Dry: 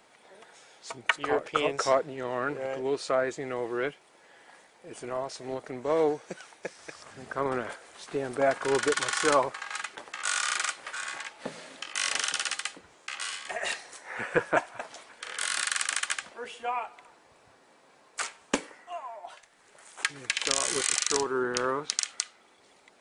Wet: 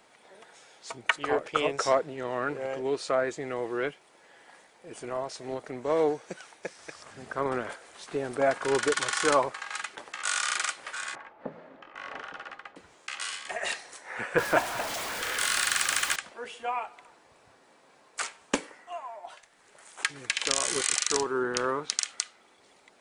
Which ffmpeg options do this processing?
-filter_complex "[0:a]asettb=1/sr,asplit=3[a][b][c];[a]atrim=end=11.154[d];[b]atrim=start=11.15:end=12.76,asetpts=PTS-STARTPTS,afade=t=in:d=0.004:c=qsin,afade=t=out:st=1.606:d=0.004:c=qsin,lowpass=1.1k[e];[c]atrim=start=12.756[f];[d][e]acrossfade=d=0.004:c1=hsin:c2=qsin[g];[g][f]acrossfade=d=0.004:c1=qsin:c2=hsin,asettb=1/sr,asplit=3[h][i][j];[h]atrim=end=14.384[k];[i]atrim=start=14.38:end=16.16,asetpts=PTS-STARTPTS,afade=t=in:d=0.004:c=qsin,afade=t=out:st=1.776:d=0.004:c=qsin,aeval=exprs='val(0)+0.5*0.0335*sgn(val(0))':c=same[l];[j]atrim=start=16.156[m];[k][l]acrossfade=d=0.004:c1=hsin:c2=qsin[n];[n][m]acrossfade=d=0.004:c1=qsin:c2=hsin"

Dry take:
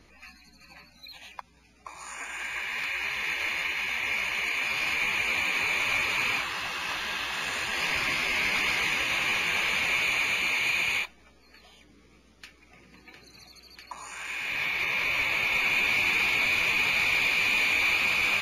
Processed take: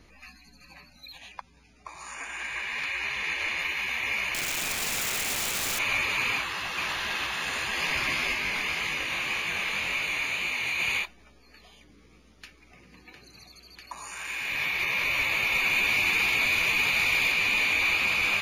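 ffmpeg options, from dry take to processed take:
-filter_complex "[0:a]asettb=1/sr,asplit=3[a][b][c];[a]atrim=end=1.184[d];[b]atrim=start=1.18:end=3.6,asetpts=PTS-STARTPTS,afade=t=in:d=0.004:c=qsin,afade=t=out:st=2.416:d=0.004:c=qsin,lowpass=10k[e];[c]atrim=start=3.596[f];[d][e]acrossfade=d=0.004:c1=hsin:c2=qsin[g];[g][f]acrossfade=d=0.004:c1=qsin:c2=hsin,asettb=1/sr,asplit=3[h][i][j];[h]atrim=end=4.344[k];[i]atrim=start=4.34:end=5.79,asetpts=PTS-STARTPTS,afade=t=in:d=0.004:c=qsin,afade=t=out:st=1.446:d=0.004:c=qsin,aeval=exprs='(mod(16.8*val(0)+1,2)-1)/16.8':c=same[l];[j]atrim=start=5.786[m];[k][l]acrossfade=d=0.004:c1=hsin:c2=qsin[n];[n][m]acrossfade=d=0.004:c1=qsin:c2=hsin,asplit=2[o][p];[p]afade=t=in:st=6.33:d=0.01,afade=t=out:st=6.82:d=0.01,aecho=0:1:440|880|1320|1760|2200|2640:0.668344|0.300755|0.13534|0.0609028|0.0274063|0.0123328[q];[o][q]amix=inputs=2:normalize=0,asplit=3[r][s][t];[r]afade=t=out:st=8.33:d=0.02[u];[s]flanger=delay=20:depth=6:speed=1.9,afade=t=in:st=8.33:d=0.02,afade=t=out:st=10.79:d=0.02[v];[t]afade=t=in:st=10.79:d=0.02[w];[u][v][w]amix=inputs=3:normalize=0,asettb=1/sr,asplit=3[x][y][z];[x]atrim=end=13.844[aa];[y]atrim=start=13.84:end=17.32,asetpts=PTS-STARTPTS,afade=t=in:d=0.004:c=qsin,afade=t=out:st=3.476:d=0.004:c=qsin,highshelf=f=6.7k:g=5.5[ab];[z]atrim=start=17.316[ac];[aa][ab]acrossfade=d=0.004:c1=hsin:c2=qsin[ad];[ad][ac]acrossfade=d=0.004:c1=qsin:c2=hsin,lowshelf=f=140:g=3"

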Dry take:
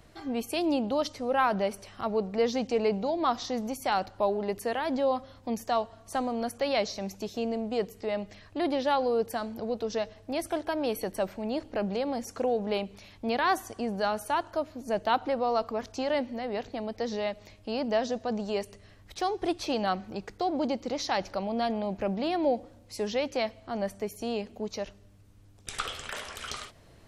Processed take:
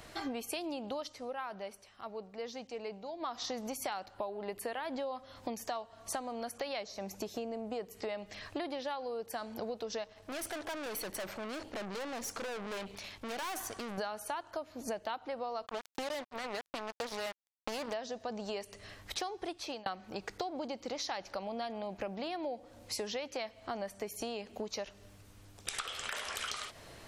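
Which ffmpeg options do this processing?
-filter_complex "[0:a]asettb=1/sr,asplit=3[a][b][c];[a]atrim=end=4.144[d];[b]atrim=start=4.14:end=4.97,asetpts=PTS-STARTPTS,afade=t=in:d=0.004:c=qsin,afade=t=out:st=0.826:d=0.004:c=qsin,equalizer=f=6k:t=o:w=0.52:g=-9[e];[c]atrim=start=4.966[f];[d][e]acrossfade=d=0.004:c1=hsin:c2=qsin[g];[g][f]acrossfade=d=0.004:c1=qsin:c2=hsin,asettb=1/sr,asplit=3[h][i][j];[h]atrim=end=6.834[k];[i]atrim=start=6.83:end=7.91,asetpts=PTS-STARTPTS,afade=t=in:d=0.004:c=qsin,afade=t=out:st=1.076:d=0.004:c=qsin,equalizer=f=3.8k:w=0.61:g=-6.5[l];[j]atrim=start=7.906[m];[k][l]acrossfade=d=0.004:c1=hsin:c2=qsin[n];[n][m]acrossfade=d=0.004:c1=qsin:c2=hsin,asettb=1/sr,asplit=3[o][p][q];[o]atrim=end=10.044[r];[p]atrim=start=10.04:end=13.98,asetpts=PTS-STARTPTS,afade=t=in:d=0.004:c=qsin,afade=t=out:st=3.936:d=0.004:c=qsin,aeval=exprs='(tanh(112*val(0)+0.6)-tanh(0.6))/112':c=same[s];[q]atrim=start=13.976[t];[r][s]acrossfade=d=0.004:c1=hsin:c2=qsin[u];[u][t]acrossfade=d=0.004:c1=qsin:c2=hsin,asplit=3[v][w][x];[v]afade=t=out:st=15.65:d=0.02[y];[w]acrusher=bits=4:mix=0:aa=0.5,afade=t=in:st=15.65:d=0.02,afade=t=out:st=17.92:d=0.02[z];[x]afade=t=in:st=17.92:d=0.02[aa];[y][z][aa]amix=inputs=3:normalize=0,asplit=4[ab][ac][ad][ae];[ab]atrim=end=1.35,asetpts=PTS-STARTPTS,afade=t=out:st=0.96:d=0.39:silence=0.112202[af];[ac]atrim=start=1.35:end=3.19,asetpts=PTS-STARTPTS,volume=-19dB[ag];[ad]atrim=start=3.19:end=19.86,asetpts=PTS-STARTPTS,afade=t=in:d=0.39:silence=0.112202,afade=t=out:st=16.19:d=0.48[ah];[ae]atrim=start=19.86,asetpts=PTS-STARTPTS,afade=t=in:d=0.004:c=hsin[ai];[af][ag][ah][ai]concat=n=4:v=0:a=1,lowshelf=f=390:g=-10.5,acompressor=threshold=-44dB:ratio=16,volume=9dB"

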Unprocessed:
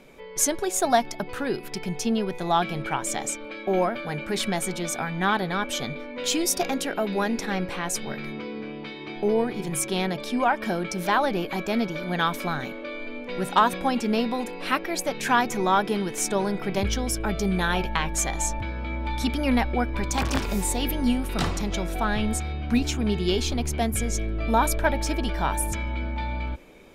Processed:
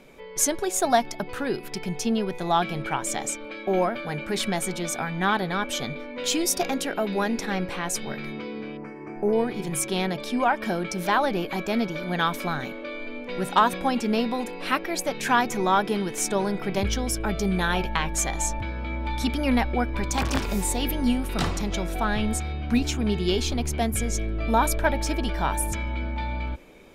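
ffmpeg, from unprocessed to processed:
-filter_complex "[0:a]asettb=1/sr,asplit=3[a][b][c];[a]atrim=end=8.774[d];[b]atrim=start=8.77:end=9.33,asetpts=PTS-STARTPTS,afade=t=in:d=0.004:c=qsin,afade=t=out:st=0.556:d=0.004:c=qsin,asuperstop=centerf=3600:order=4:qfactor=0.69[e];[c]atrim=start=9.326[f];[d][e]acrossfade=d=0.004:c1=hsin:c2=qsin[g];[g][f]acrossfade=d=0.004:c1=qsin:c2=hsin"

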